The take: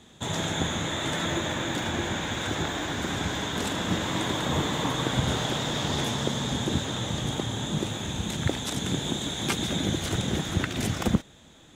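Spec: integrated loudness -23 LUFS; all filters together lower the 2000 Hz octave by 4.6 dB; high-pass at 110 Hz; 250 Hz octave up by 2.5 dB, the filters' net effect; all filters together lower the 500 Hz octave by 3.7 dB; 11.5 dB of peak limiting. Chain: HPF 110 Hz; bell 250 Hz +5.5 dB; bell 500 Hz -7 dB; bell 2000 Hz -5.5 dB; gain +7 dB; limiter -12 dBFS

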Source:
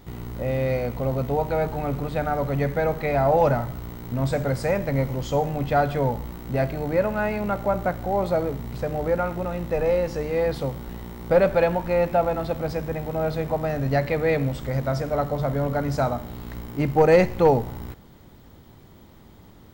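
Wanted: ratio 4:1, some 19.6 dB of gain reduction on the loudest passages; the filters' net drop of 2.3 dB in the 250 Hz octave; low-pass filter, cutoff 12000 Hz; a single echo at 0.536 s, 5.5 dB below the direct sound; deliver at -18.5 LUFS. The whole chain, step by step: LPF 12000 Hz; bell 250 Hz -3.5 dB; compressor 4:1, threshold -38 dBFS; echo 0.536 s -5.5 dB; gain +20 dB

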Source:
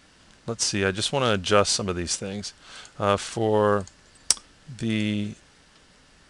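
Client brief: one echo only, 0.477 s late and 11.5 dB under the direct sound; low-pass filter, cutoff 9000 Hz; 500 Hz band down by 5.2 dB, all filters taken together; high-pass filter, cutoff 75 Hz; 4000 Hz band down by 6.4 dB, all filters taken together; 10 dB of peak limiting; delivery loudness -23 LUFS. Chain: HPF 75 Hz; LPF 9000 Hz; bell 500 Hz -6 dB; bell 4000 Hz -8.5 dB; limiter -14.5 dBFS; echo 0.477 s -11.5 dB; gain +7 dB

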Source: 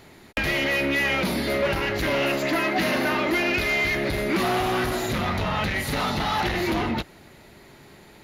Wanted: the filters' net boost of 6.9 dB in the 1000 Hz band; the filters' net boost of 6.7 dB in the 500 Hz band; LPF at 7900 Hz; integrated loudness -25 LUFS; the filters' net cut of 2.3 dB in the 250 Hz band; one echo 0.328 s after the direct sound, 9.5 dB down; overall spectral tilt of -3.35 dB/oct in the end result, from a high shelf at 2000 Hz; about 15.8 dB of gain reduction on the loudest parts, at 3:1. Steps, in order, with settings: LPF 7900 Hz; bell 250 Hz -8.5 dB; bell 500 Hz +9 dB; bell 1000 Hz +8 dB; high shelf 2000 Hz -6.5 dB; compressor 3:1, threshold -35 dBFS; echo 0.328 s -9.5 dB; gain +8 dB

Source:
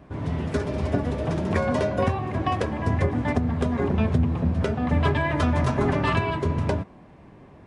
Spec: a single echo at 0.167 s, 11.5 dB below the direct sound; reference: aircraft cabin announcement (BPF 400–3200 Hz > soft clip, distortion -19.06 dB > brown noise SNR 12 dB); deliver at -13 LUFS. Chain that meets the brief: BPF 400–3200 Hz; echo 0.167 s -11.5 dB; soft clip -19 dBFS; brown noise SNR 12 dB; gain +17.5 dB

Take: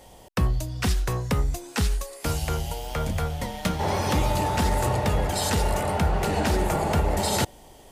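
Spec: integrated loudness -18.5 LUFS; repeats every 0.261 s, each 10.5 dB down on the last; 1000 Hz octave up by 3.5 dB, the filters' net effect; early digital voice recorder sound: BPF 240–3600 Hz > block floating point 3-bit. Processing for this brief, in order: BPF 240–3600 Hz; bell 1000 Hz +4.5 dB; feedback echo 0.261 s, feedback 30%, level -10.5 dB; block floating point 3-bit; gain +7.5 dB

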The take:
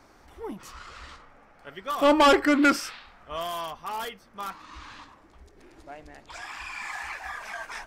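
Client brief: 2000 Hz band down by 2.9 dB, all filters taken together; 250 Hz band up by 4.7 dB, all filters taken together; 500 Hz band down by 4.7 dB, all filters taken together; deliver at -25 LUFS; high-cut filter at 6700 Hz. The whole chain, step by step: LPF 6700 Hz; bell 250 Hz +8.5 dB; bell 500 Hz -8 dB; bell 2000 Hz -3.5 dB; gain -1 dB

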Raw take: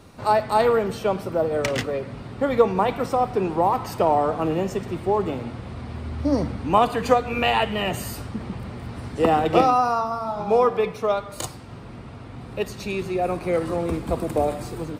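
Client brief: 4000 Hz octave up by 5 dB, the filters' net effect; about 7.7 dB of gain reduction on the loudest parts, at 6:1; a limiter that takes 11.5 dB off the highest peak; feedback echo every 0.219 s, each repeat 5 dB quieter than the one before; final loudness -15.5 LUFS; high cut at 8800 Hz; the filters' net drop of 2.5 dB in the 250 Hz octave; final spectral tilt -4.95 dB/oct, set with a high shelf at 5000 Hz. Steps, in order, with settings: LPF 8800 Hz; bell 250 Hz -3.5 dB; bell 4000 Hz +5.5 dB; high shelf 5000 Hz +4.5 dB; compressor 6:1, threshold -20 dBFS; limiter -18.5 dBFS; feedback echo 0.219 s, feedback 56%, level -5 dB; gain +12 dB

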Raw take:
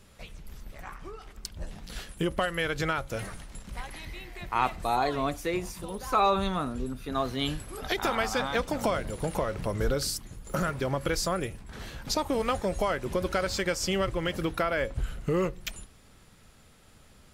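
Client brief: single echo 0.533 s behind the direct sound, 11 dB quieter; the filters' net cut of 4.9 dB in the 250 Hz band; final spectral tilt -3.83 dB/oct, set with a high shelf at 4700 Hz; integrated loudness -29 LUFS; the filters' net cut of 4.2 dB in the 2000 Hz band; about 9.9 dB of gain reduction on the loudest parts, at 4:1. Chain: bell 250 Hz -7.5 dB; bell 2000 Hz -7 dB; high shelf 4700 Hz +8.5 dB; compressor 4:1, threshold -33 dBFS; echo 0.533 s -11 dB; gain +8 dB

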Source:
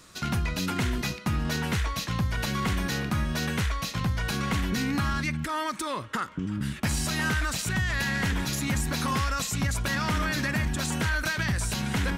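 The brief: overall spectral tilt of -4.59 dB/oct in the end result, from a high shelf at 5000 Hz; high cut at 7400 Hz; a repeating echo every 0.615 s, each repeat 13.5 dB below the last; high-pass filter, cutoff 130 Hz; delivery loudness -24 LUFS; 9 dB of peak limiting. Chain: HPF 130 Hz; LPF 7400 Hz; high shelf 5000 Hz -6.5 dB; limiter -24.5 dBFS; feedback echo 0.615 s, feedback 21%, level -13.5 dB; gain +9.5 dB

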